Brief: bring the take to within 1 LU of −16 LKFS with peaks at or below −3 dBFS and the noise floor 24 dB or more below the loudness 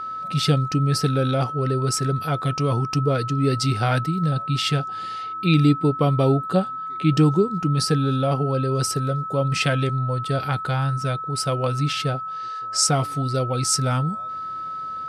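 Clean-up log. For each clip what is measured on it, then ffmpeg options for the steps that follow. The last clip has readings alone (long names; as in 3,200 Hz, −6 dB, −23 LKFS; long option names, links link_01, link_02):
interfering tone 1,300 Hz; level of the tone −28 dBFS; integrated loudness −22.0 LKFS; sample peak −7.0 dBFS; target loudness −16.0 LKFS
→ -af "bandreject=frequency=1300:width=30"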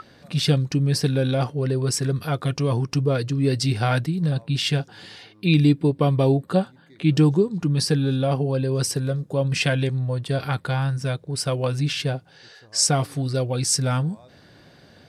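interfering tone none found; integrated loudness −22.5 LKFS; sample peak −7.5 dBFS; target loudness −16.0 LKFS
→ -af "volume=6.5dB,alimiter=limit=-3dB:level=0:latency=1"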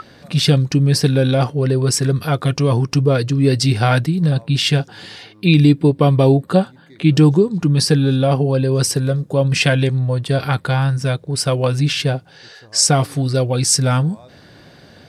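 integrated loudness −16.5 LKFS; sample peak −3.0 dBFS; background noise floor −46 dBFS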